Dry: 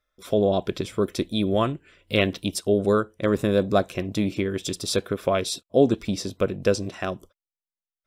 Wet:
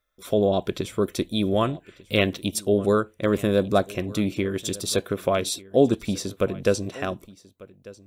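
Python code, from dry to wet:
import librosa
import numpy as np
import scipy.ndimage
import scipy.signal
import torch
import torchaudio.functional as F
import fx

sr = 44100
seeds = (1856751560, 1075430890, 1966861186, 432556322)

p1 = fx.high_shelf(x, sr, hz=11000.0, db=8.5)
p2 = fx.notch(p1, sr, hz=5100.0, q=11.0)
y = p2 + fx.echo_single(p2, sr, ms=1195, db=-21.0, dry=0)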